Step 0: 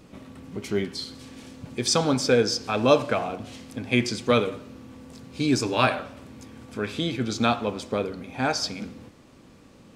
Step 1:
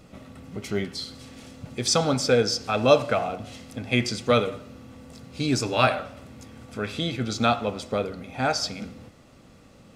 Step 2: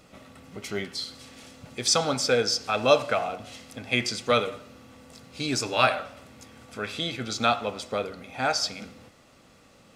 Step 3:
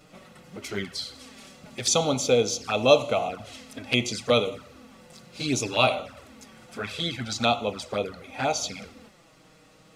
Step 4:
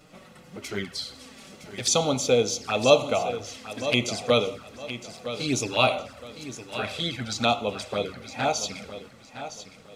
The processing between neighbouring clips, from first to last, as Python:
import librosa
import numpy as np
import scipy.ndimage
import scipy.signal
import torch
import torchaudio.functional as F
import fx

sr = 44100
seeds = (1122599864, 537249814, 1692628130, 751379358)

y1 = x + 0.33 * np.pad(x, (int(1.5 * sr / 1000.0), 0))[:len(x)]
y2 = fx.low_shelf(y1, sr, hz=410.0, db=-9.5)
y2 = y2 * 10.0 ** (1.0 / 20.0)
y3 = fx.env_flanger(y2, sr, rest_ms=7.2, full_db=-23.5)
y3 = y3 * 10.0 ** (3.5 / 20.0)
y4 = fx.echo_feedback(y3, sr, ms=962, feedback_pct=31, wet_db=-12.0)